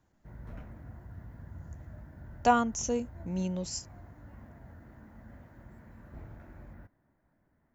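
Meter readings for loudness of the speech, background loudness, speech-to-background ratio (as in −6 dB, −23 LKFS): −31.0 LKFS, −50.0 LKFS, 19.0 dB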